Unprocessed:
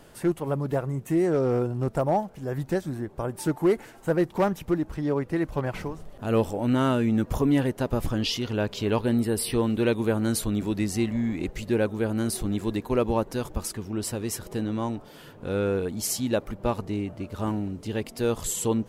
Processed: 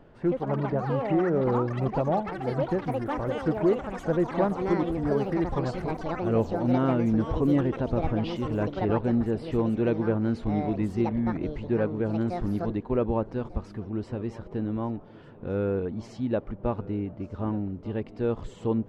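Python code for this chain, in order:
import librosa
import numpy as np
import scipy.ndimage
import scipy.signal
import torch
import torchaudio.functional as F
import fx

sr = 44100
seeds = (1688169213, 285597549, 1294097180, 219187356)

y = fx.spacing_loss(x, sr, db_at_10k=41)
y = fx.echo_pitch(y, sr, ms=155, semitones=7, count=3, db_per_echo=-6.0)
y = y + 10.0 ** (-20.0 / 20.0) * np.pad(y, (int(1195 * sr / 1000.0), 0))[:len(y)]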